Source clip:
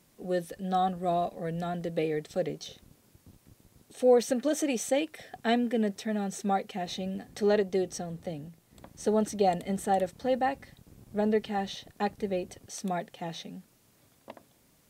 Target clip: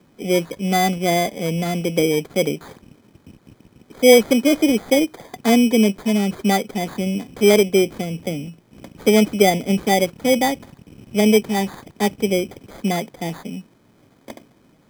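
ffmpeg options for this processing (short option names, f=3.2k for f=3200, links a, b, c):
-filter_complex "[0:a]acrossover=split=270|2300[a][b][c];[c]alimiter=level_in=10.5dB:limit=-24dB:level=0:latency=1:release=15,volume=-10.5dB[d];[a][b][d]amix=inputs=3:normalize=0,equalizer=f=270:w=0.49:g=10.5,acrusher=samples=16:mix=1:aa=0.000001,volume=3.5dB"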